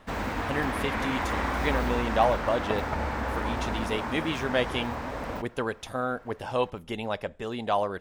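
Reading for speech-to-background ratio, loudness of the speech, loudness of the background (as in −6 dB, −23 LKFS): 0.5 dB, −31.0 LKFS, −31.5 LKFS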